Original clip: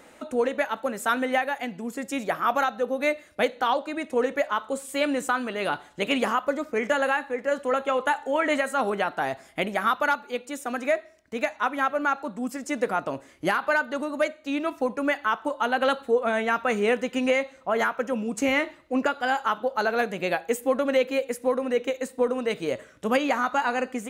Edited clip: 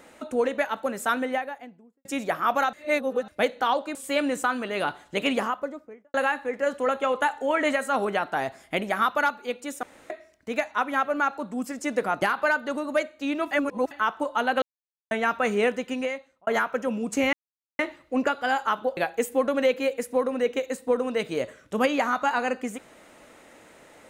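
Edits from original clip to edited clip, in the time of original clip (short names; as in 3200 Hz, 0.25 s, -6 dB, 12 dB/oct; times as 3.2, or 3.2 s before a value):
0.99–2.05 studio fade out
2.73–3.28 reverse
3.95–4.8 cut
6.07–6.99 studio fade out
10.68–10.95 room tone
13.07–13.47 cut
14.76–15.16 reverse
15.87–16.36 mute
16.88–17.72 fade out
18.58 insert silence 0.46 s
19.76–20.28 cut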